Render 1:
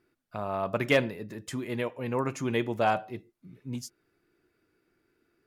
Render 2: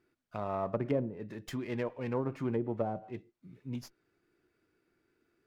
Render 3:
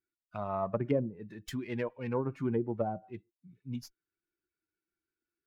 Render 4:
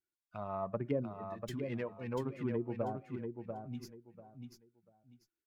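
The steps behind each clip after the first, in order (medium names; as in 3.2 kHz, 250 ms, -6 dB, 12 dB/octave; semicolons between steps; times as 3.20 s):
low-pass that closes with the level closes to 440 Hz, closed at -23 dBFS; sliding maximum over 3 samples; trim -3 dB
expander on every frequency bin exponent 1.5; trim +3 dB
feedback delay 691 ms, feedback 23%, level -6 dB; trim -5 dB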